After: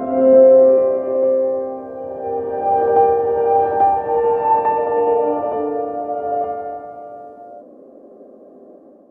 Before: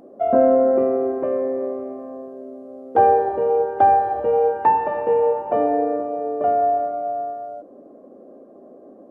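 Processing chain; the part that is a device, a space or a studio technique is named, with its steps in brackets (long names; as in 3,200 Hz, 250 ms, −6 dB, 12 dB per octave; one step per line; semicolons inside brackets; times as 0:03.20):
reverse reverb (reversed playback; convolution reverb RT60 3.2 s, pre-delay 63 ms, DRR −3 dB; reversed playback)
level −3 dB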